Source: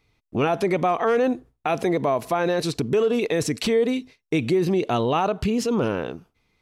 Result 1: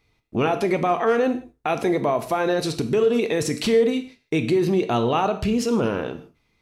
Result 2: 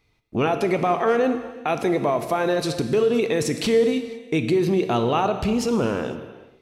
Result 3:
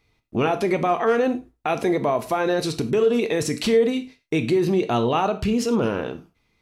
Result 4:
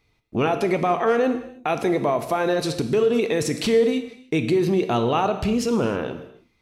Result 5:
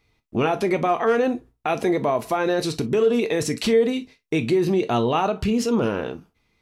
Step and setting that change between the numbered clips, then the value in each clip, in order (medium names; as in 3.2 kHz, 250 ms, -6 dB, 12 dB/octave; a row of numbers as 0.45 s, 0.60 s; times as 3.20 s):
gated-style reverb, gate: 190 ms, 530 ms, 130 ms, 340 ms, 80 ms